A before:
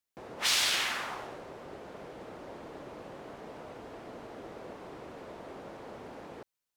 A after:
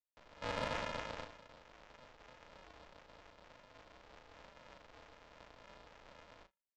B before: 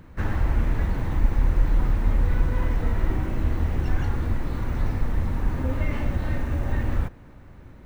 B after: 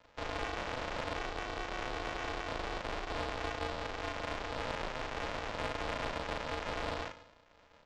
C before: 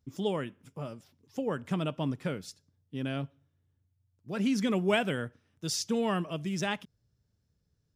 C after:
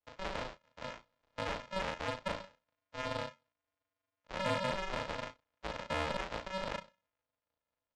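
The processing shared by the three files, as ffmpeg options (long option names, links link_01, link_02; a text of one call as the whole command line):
ffmpeg -i in.wav -filter_complex "[0:a]bandreject=frequency=50:width_type=h:width=6,bandreject=frequency=100:width_type=h:width=6,bandreject=frequency=150:width_type=h:width=6,bandreject=frequency=200:width_type=h:width=6,agate=range=-9dB:threshold=-41dB:ratio=16:detection=peak,equalizer=frequency=350:width=2.4:gain=13,alimiter=limit=-17.5dB:level=0:latency=1:release=294,aresample=16000,acrusher=samples=42:mix=1:aa=0.000001,aresample=44100,acrossover=split=440 5200:gain=0.0891 1 0.0891[link_01][link_02][link_03];[link_01][link_02][link_03]amix=inputs=3:normalize=0,asoftclip=type=tanh:threshold=-24.5dB,aecho=1:1:37|72:0.668|0.133,volume=1dB" out.wav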